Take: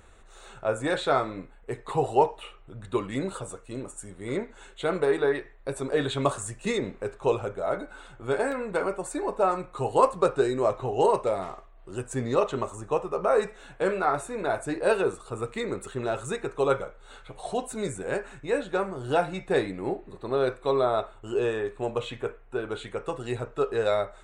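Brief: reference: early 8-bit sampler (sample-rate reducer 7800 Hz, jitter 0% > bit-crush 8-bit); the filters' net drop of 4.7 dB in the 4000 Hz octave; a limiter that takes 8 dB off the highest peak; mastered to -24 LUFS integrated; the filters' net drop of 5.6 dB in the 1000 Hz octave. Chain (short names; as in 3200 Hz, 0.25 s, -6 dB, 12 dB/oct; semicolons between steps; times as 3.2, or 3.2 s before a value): bell 1000 Hz -7.5 dB; bell 4000 Hz -5 dB; limiter -18 dBFS; sample-rate reducer 7800 Hz, jitter 0%; bit-crush 8-bit; gain +7.5 dB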